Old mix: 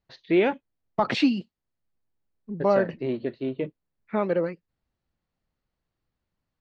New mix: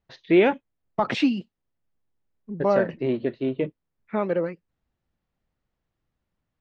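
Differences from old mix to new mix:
first voice +3.5 dB; master: add bell 4400 Hz -6.5 dB 0.22 oct

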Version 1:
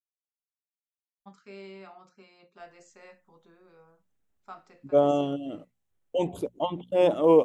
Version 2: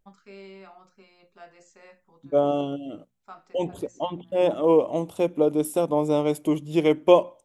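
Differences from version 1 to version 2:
first voice: entry -1.20 s; second voice: entry -2.60 s

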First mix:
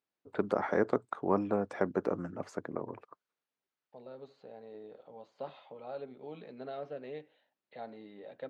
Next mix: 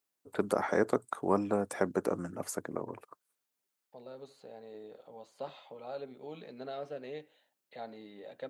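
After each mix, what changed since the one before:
master: remove air absorption 190 m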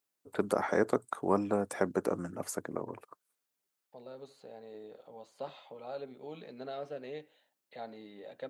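none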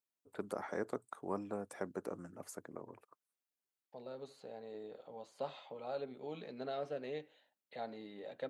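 first voice -11.0 dB

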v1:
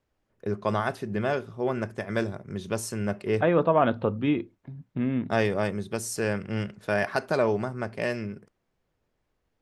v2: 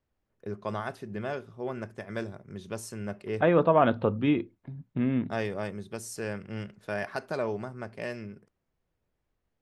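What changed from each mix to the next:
first voice -7.0 dB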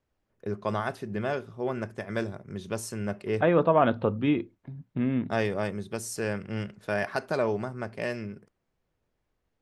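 first voice +4.0 dB

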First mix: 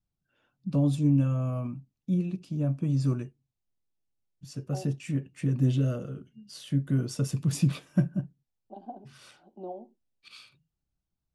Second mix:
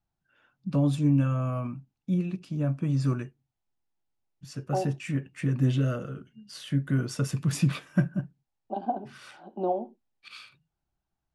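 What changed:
second voice +10.0 dB; master: add bell 1600 Hz +9 dB 1.6 oct

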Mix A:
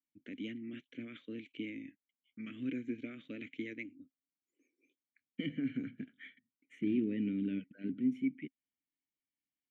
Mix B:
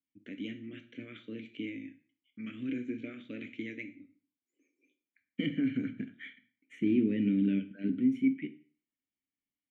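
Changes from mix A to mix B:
second voice +4.0 dB; reverb: on, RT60 0.45 s

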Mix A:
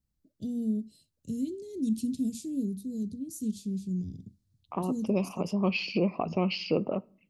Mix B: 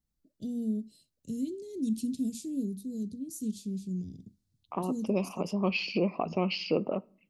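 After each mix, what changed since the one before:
master: add bell 95 Hz -7 dB 1.5 oct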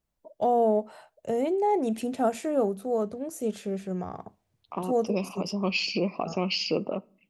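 first voice: remove Chebyshev band-stop 270–4100 Hz, order 3; second voice: remove air absorption 210 m

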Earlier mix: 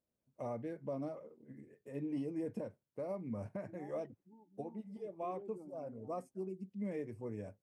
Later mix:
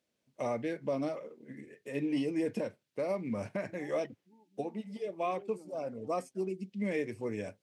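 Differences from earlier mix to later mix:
first voice +8.0 dB; master: add weighting filter D

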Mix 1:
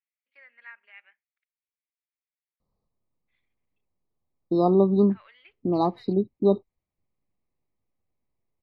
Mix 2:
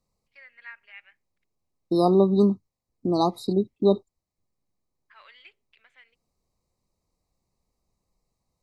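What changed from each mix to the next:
second voice: entry -2.60 s; master: remove air absorption 300 m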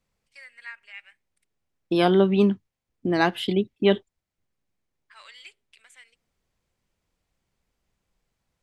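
first voice: remove air absorption 320 m; second voice: remove brick-wall FIR band-stop 1300–3700 Hz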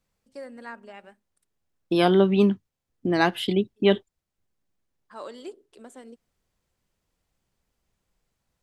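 first voice: remove resonant high-pass 2200 Hz, resonance Q 4.5; master: add high shelf 10000 Hz +6 dB

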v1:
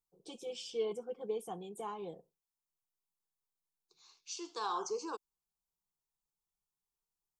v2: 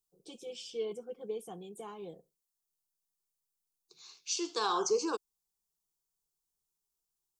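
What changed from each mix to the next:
second voice +9.5 dB; master: add bell 930 Hz -6.5 dB 0.93 oct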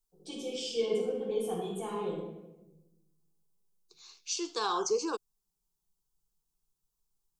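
reverb: on, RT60 1.0 s

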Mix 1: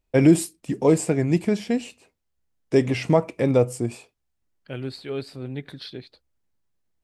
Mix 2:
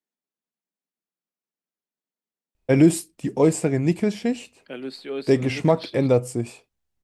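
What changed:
first voice: entry +2.55 s; second voice: add steep high-pass 170 Hz 48 dB/oct

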